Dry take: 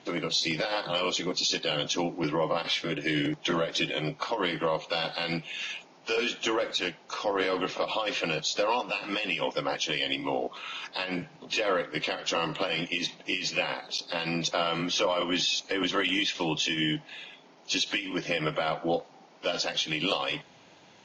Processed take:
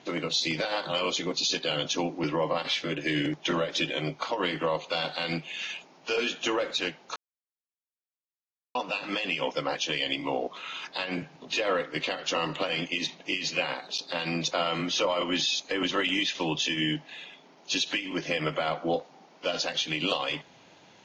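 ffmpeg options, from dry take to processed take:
-filter_complex "[0:a]asplit=3[s0][s1][s2];[s0]atrim=end=7.16,asetpts=PTS-STARTPTS,afade=t=out:st=7.156:d=0.004:c=hsin[s3];[s1]atrim=start=7.16:end=8.75,asetpts=PTS-STARTPTS,volume=0[s4];[s2]atrim=start=8.75,asetpts=PTS-STARTPTS,afade=t=in:d=0.004:c=hsin[s5];[s3][s4][s5]concat=n=3:v=0:a=1"

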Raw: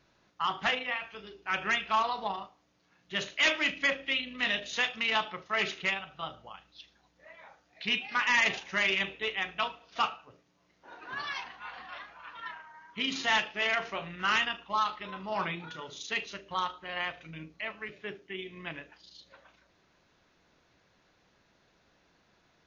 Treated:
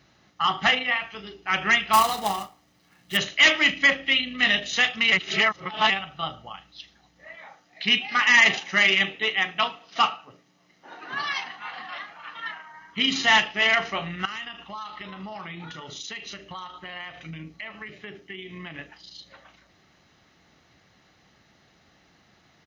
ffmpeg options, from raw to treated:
-filter_complex "[0:a]asettb=1/sr,asplit=3[s0][s1][s2];[s0]atrim=end=1.934[s3];[s1]atrim=start=1.93:end=3.17,asetpts=PTS-STARTPTS,afade=t=in:d=0.004:c=qsin,afade=t=out:st=1.236:d=0.004:c=qsin,acrusher=bits=2:mode=log:mix=0:aa=0.000001[s4];[s2]atrim=start=3.166[s5];[s3][s4]acrossfade=d=0.004:c1=hsin:c2=qsin[s6];[s6][s5]acrossfade=d=0.004:c1=qsin:c2=hsin,asettb=1/sr,asplit=3[s7][s8][s9];[s7]atrim=end=7.354[s10];[s8]atrim=start=7.35:end=12.73,asetpts=PTS-STARTPTS,afade=t=in:d=0.004:c=qsin,afade=t=out:st=5.376:d=0.004:c=qsin,highpass=150[s11];[s9]atrim=start=12.726[s12];[s10][s11]acrossfade=d=0.004:c1=hsin:c2=qsin[s13];[s13][s12]acrossfade=d=0.004:c1=qsin:c2=hsin,asettb=1/sr,asplit=3[s14][s15][s16];[s14]atrim=end=14.254[s17];[s15]atrim=start=14.25:end=18.79,asetpts=PTS-STARTPTS,afade=t=in:d=0.004:c=qsin,afade=t=out:st=4.536:d=0.004:c=qsin,acompressor=threshold=0.00794:ratio=5:attack=3.2:release=140:knee=1:detection=peak[s18];[s16]atrim=start=18.786[s19];[s17][s18]acrossfade=d=0.004:c1=hsin:c2=qsin[s20];[s20][s19]acrossfade=d=0.004:c1=qsin:c2=hsin,asplit=3[s21][s22][s23];[s21]atrim=end=5.122[s24];[s22]atrim=start=5.118:end=5.902,asetpts=PTS-STARTPTS,areverse[s25];[s23]atrim=start=5.898[s26];[s24][s25]acrossfade=d=0.004:c1=hsin:c2=hsin[s27];[s27][s26]acrossfade=d=0.004:c1=hsin:c2=hsin,highpass=62,bandreject=f=990:w=5.6,aecho=1:1:1:0.38,volume=2.51"

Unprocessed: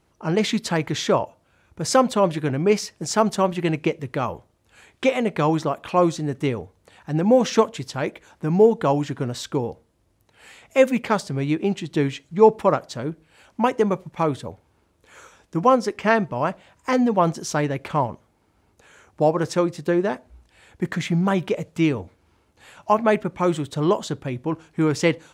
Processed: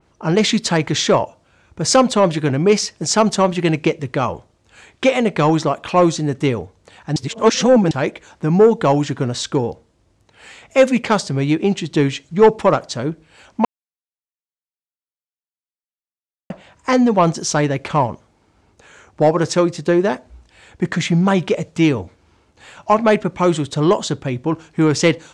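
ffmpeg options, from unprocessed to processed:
-filter_complex "[0:a]asplit=5[s0][s1][s2][s3][s4];[s0]atrim=end=7.162[s5];[s1]atrim=start=7.158:end=7.912,asetpts=PTS-STARTPTS,areverse[s6];[s2]atrim=start=7.908:end=13.65,asetpts=PTS-STARTPTS,afade=t=out:st=5.738:d=0.004:c=hsin[s7];[s3]atrim=start=13.65:end=16.5,asetpts=PTS-STARTPTS,volume=0[s8];[s4]atrim=start=16.5,asetpts=PTS-STARTPTS,afade=t=in:d=0.004:c=hsin[s9];[s5][s6]acrossfade=d=0.004:c1=hsin:c2=hsin[s10];[s7][s8][s9]concat=n=3:v=0:a=1[s11];[s10][s11]acrossfade=d=0.004:c1=hsin:c2=hsin,lowpass=f=8400:w=0.5412,lowpass=f=8400:w=1.3066,acontrast=80,adynamicequalizer=threshold=0.0282:dfrequency=3300:dqfactor=0.7:tfrequency=3300:tqfactor=0.7:attack=5:release=100:ratio=0.375:range=2:mode=boostabove:tftype=highshelf,volume=0.891"

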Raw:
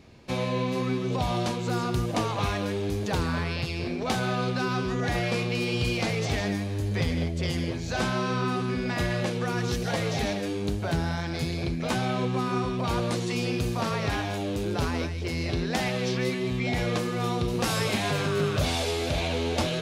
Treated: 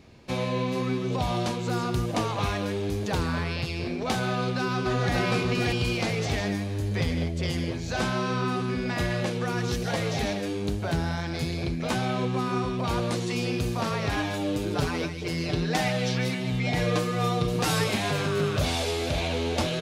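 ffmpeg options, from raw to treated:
-filter_complex "[0:a]asplit=2[s0][s1];[s1]afade=t=in:st=4.27:d=0.01,afade=t=out:st=5.14:d=0.01,aecho=0:1:580|1160|1740:0.841395|0.168279|0.0336558[s2];[s0][s2]amix=inputs=2:normalize=0,asettb=1/sr,asplit=3[s3][s4][s5];[s3]atrim=end=14.164[s6];[s4]atrim=start=14.16:end=17.84,asetpts=PTS-STARTPTS,afade=t=in:d=0.004:c=qsin,afade=t=out:st=3.676:d=0.004:c=qsin,aecho=1:1:6.6:0.68,atrim=end_sample=162288[s7];[s5]atrim=start=17.836[s8];[s6][s7]acrossfade=d=0.004:c1=hsin:c2=qsin[s9];[s9][s8]acrossfade=d=0.004:c1=qsin:c2=hsin"

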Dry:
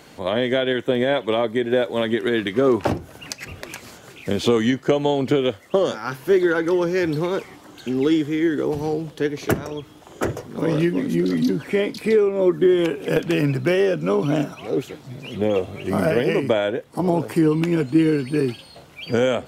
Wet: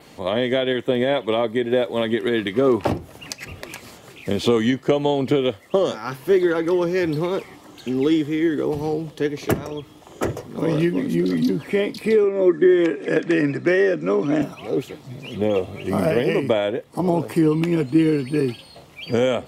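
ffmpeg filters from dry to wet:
-filter_complex "[0:a]asettb=1/sr,asplit=3[s0][s1][s2];[s0]atrim=end=12.244[s3];[s1]atrim=start=12.24:end=14.42,asetpts=PTS-STARTPTS,afade=t=in:d=0.004:c=qsin,afade=t=out:st=2.176:d=0.004:c=qsin,highpass=200,equalizer=f=320:t=q:w=4:g=4,equalizer=f=870:t=q:w=4:g=-5,equalizer=f=1800:t=q:w=4:g=9,equalizer=f=2900:t=q:w=4:g=-7,equalizer=f=4300:t=q:w=4:g=-4,lowpass=f=8000:w=0.5412,lowpass=f=8000:w=1.3066[s4];[s2]atrim=start=14.416[s5];[s3][s4]acrossfade=d=0.004:c1=hsin:c2=qsin[s6];[s6][s5]acrossfade=d=0.004:c1=qsin:c2=hsin,bandreject=f=1500:w=7.9,adynamicequalizer=threshold=0.00158:dfrequency=6300:dqfactor=3.4:tfrequency=6300:tqfactor=3.4:attack=5:release=100:ratio=0.375:range=2:mode=cutabove:tftype=bell"

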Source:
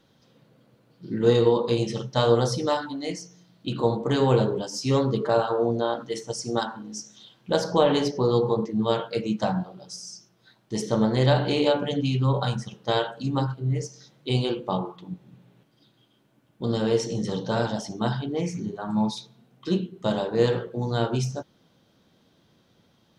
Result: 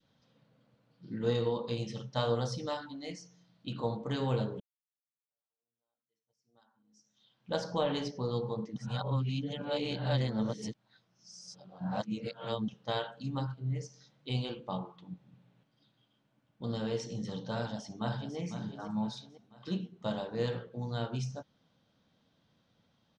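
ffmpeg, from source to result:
-filter_complex "[0:a]asplit=2[s0][s1];[s1]afade=t=in:st=17.57:d=0.01,afade=t=out:st=18.37:d=0.01,aecho=0:1:500|1000|1500|2000|2500:0.398107|0.159243|0.0636971|0.0254789|0.0101915[s2];[s0][s2]amix=inputs=2:normalize=0,asplit=4[s3][s4][s5][s6];[s3]atrim=end=4.6,asetpts=PTS-STARTPTS,afade=t=out:st=4.596:d=0.004:c=hsin[s7];[s4]atrim=start=4.6:end=8.762,asetpts=PTS-STARTPTS,afade=t=in:d=2.94:c=exp[s8];[s5]atrim=start=8.758:end=12.682,asetpts=PTS-STARTPTS,areverse[s9];[s6]atrim=start=12.678[s10];[s7][s8]concat=n=2:v=0:a=1[s11];[s11][s9]acrossfade=d=0.004:c1=hsin:c2=hsin[s12];[s12][s10]acrossfade=d=0.004:c1=hsin:c2=hsin,adynamicequalizer=threshold=0.0141:dfrequency=910:dqfactor=0.73:tfrequency=910:tqfactor=0.73:attack=5:release=100:ratio=0.375:range=2.5:mode=cutabove:tftype=bell,lowpass=6100,equalizer=f=370:w=3.4:g=-8.5,volume=0.376"

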